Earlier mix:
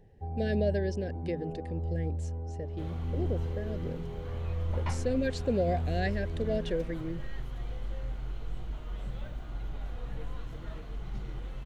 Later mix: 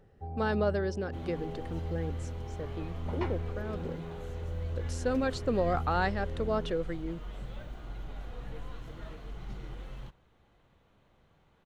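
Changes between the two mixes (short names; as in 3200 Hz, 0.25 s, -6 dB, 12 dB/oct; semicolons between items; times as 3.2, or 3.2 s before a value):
speech: remove Chebyshev band-stop 730–1600 Hz, order 5; second sound: entry -1.65 s; master: add low shelf 160 Hz -4.5 dB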